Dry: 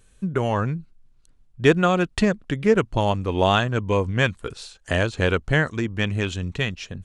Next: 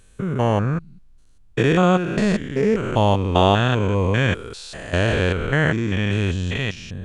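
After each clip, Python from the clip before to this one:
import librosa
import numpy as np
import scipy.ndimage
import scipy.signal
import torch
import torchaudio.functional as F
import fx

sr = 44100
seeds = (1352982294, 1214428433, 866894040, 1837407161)

y = fx.spec_steps(x, sr, hold_ms=200)
y = y * 10.0 ** (5.5 / 20.0)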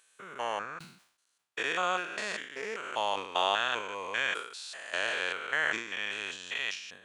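y = scipy.signal.sosfilt(scipy.signal.butter(2, 980.0, 'highpass', fs=sr, output='sos'), x)
y = fx.sustainer(y, sr, db_per_s=94.0)
y = y * 10.0 ** (-5.5 / 20.0)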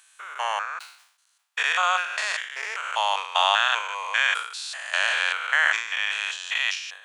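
y = scipy.signal.sosfilt(scipy.signal.butter(4, 760.0, 'highpass', fs=sr, output='sos'), x)
y = y * 10.0 ** (9.0 / 20.0)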